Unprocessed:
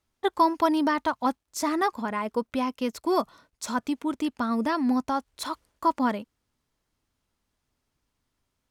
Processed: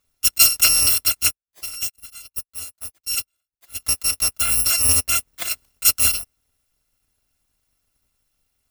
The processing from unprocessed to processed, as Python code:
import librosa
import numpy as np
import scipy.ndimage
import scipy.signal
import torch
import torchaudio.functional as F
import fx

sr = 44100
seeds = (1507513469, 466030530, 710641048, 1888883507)

y = fx.bit_reversed(x, sr, seeds[0], block=256)
y = fx.upward_expand(y, sr, threshold_db=-35.0, expansion=2.5, at=(1.27, 3.79), fade=0.02)
y = y * 10.0 ** (7.0 / 20.0)